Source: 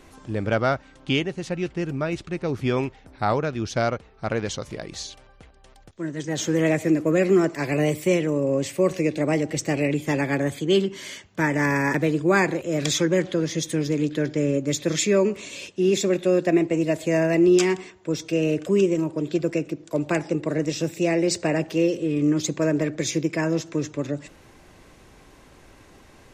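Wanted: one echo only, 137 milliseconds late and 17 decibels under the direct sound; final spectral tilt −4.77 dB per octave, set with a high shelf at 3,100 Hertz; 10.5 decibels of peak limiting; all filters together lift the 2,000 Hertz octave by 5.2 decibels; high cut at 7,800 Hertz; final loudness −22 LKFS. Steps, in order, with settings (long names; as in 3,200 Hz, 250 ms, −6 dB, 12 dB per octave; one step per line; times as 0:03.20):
low-pass filter 7,800 Hz
parametric band 2,000 Hz +5 dB
high-shelf EQ 3,100 Hz +4 dB
brickwall limiter −15 dBFS
single-tap delay 137 ms −17 dB
level +3.5 dB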